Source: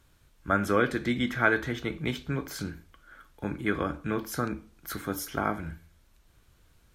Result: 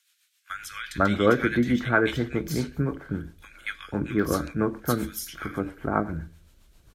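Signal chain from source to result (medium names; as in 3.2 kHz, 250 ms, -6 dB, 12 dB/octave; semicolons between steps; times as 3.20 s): bands offset in time highs, lows 500 ms, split 1.8 kHz; rotary cabinet horn 7.5 Hz; trim +6.5 dB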